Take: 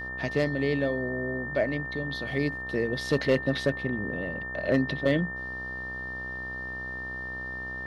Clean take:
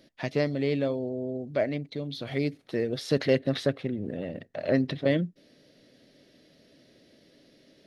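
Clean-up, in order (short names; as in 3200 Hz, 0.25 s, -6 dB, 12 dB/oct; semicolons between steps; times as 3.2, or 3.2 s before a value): clip repair -15 dBFS; de-hum 63.4 Hz, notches 21; notch 1800 Hz, Q 30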